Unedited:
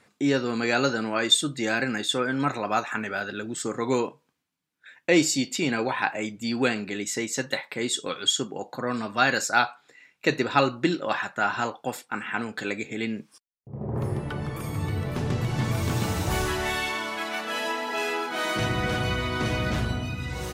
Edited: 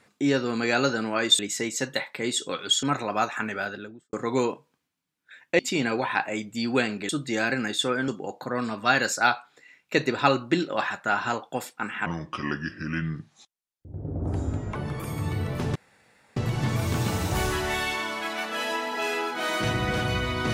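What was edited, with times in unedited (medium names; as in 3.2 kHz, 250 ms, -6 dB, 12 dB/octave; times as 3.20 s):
1.39–2.38 s: swap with 6.96–8.40 s
3.14–3.68 s: studio fade out
5.14–5.46 s: delete
12.38–14.32 s: speed 72%
15.32 s: insert room tone 0.61 s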